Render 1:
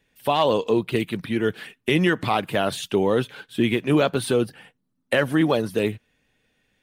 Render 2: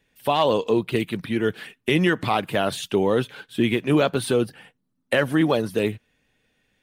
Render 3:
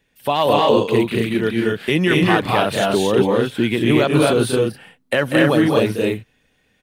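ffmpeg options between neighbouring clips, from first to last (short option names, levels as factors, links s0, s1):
-af anull
-af "aecho=1:1:192.4|224.5|259.5:0.398|0.891|0.708,volume=1.26"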